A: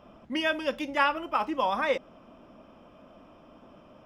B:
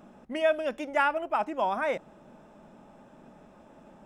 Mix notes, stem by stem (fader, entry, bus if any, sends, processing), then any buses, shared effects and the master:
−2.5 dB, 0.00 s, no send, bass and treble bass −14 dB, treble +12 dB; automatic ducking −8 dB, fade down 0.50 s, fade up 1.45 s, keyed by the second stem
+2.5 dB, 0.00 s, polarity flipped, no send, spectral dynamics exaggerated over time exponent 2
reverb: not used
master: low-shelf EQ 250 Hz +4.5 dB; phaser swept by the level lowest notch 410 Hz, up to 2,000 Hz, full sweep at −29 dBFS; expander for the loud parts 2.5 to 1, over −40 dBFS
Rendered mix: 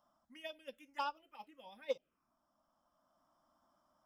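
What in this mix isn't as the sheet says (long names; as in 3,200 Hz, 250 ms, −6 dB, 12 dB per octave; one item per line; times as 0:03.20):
stem B +2.5 dB → −8.5 dB
master: missing low-shelf EQ 250 Hz +4.5 dB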